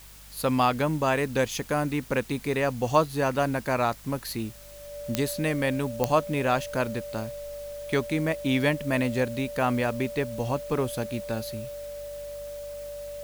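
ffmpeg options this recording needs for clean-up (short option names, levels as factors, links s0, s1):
-af "adeclick=t=4,bandreject=f=49.6:t=h:w=4,bandreject=f=99.2:t=h:w=4,bandreject=f=148.8:t=h:w=4,bandreject=f=198.4:t=h:w=4,bandreject=f=580:w=30,afwtdn=0.0032"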